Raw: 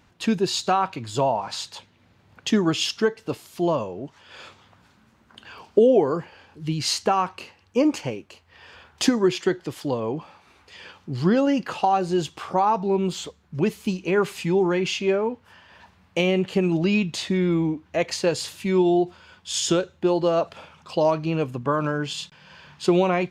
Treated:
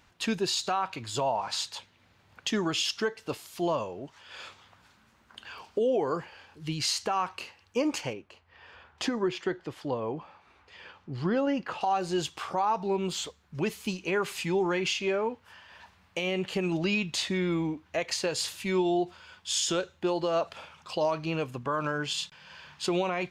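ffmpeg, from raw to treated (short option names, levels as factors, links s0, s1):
-filter_complex "[0:a]asettb=1/sr,asplit=3[s0][s1][s2];[s0]atrim=end=8.134[s3];[s1]atrim=start=8.13:end=11.81,asetpts=PTS-STARTPTS,afade=t=in:d=0.004:c=qsin,afade=t=out:st=3.676:d=0.004:c=qsin,lowpass=f=1600:p=1[s4];[s2]atrim=start=11.806[s5];[s3][s4]acrossfade=d=0.004:c1=hsin:c2=qsin[s6];[s6][s5]acrossfade=d=0.004:c1=qsin:c2=hsin,equalizer=f=190:w=0.35:g=-8,alimiter=limit=0.119:level=0:latency=1:release=106"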